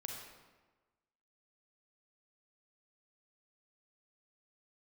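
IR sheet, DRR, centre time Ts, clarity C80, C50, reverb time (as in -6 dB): 0.0 dB, 60 ms, 4.0 dB, 1.5 dB, 1.3 s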